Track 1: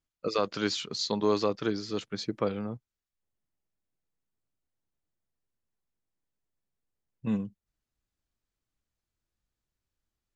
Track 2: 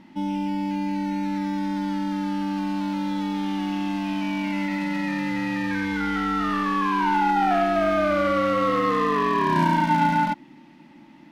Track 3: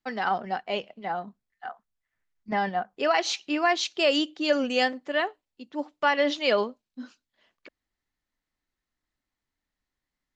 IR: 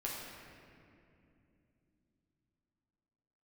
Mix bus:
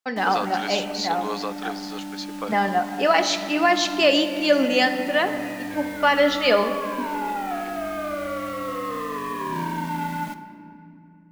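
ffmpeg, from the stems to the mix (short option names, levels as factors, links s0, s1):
-filter_complex "[0:a]highpass=710,volume=1.41[s0];[1:a]acrusher=bits=5:mix=0:aa=0.000001,volume=0.316,asplit=2[s1][s2];[s2]volume=0.422[s3];[2:a]agate=range=0.0224:threshold=0.00316:ratio=3:detection=peak,volume=1.26,asplit=2[s4][s5];[s5]volume=0.531[s6];[3:a]atrim=start_sample=2205[s7];[s3][s6]amix=inputs=2:normalize=0[s8];[s8][s7]afir=irnorm=-1:irlink=0[s9];[s0][s1][s4][s9]amix=inputs=4:normalize=0"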